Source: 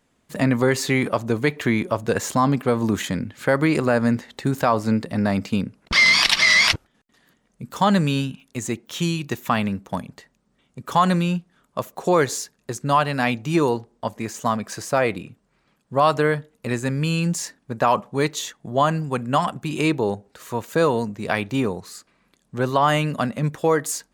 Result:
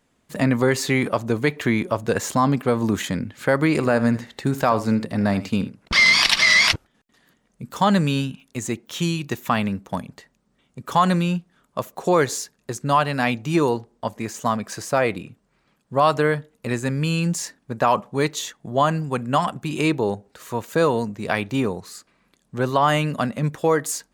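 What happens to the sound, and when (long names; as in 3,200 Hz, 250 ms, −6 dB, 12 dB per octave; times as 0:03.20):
0:03.67–0:06.70: single-tap delay 78 ms −14.5 dB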